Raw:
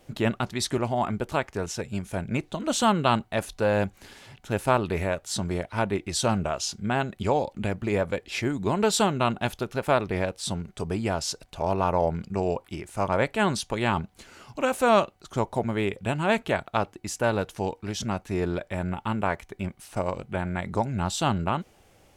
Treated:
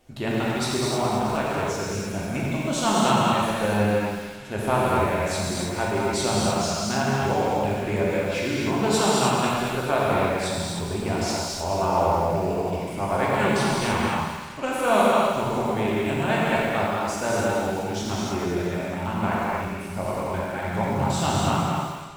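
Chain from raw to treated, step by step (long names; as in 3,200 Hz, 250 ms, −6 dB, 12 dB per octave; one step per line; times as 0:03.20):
on a send: echo with a time of its own for lows and highs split 1,100 Hz, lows 116 ms, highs 213 ms, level −8 dB
on the sum: reverb whose tail is shaped and stops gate 340 ms flat, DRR −6 dB
feedback echo at a low word length 88 ms, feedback 35%, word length 5 bits, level −12 dB
level −4.5 dB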